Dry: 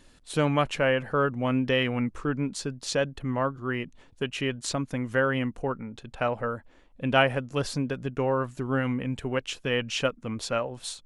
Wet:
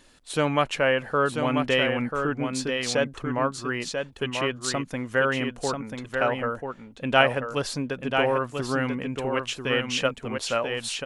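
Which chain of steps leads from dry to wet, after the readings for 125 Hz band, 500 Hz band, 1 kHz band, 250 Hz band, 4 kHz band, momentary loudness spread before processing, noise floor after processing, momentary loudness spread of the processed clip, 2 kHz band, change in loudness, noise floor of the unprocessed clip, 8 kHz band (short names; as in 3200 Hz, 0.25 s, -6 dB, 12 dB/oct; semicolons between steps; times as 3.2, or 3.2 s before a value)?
-2.0 dB, +2.5 dB, +3.5 dB, 0.0 dB, +4.0 dB, 9 LU, -49 dBFS, 8 LU, +4.0 dB, +2.0 dB, -56 dBFS, +4.0 dB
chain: low shelf 250 Hz -8 dB; echo 0.989 s -5.5 dB; gain +3 dB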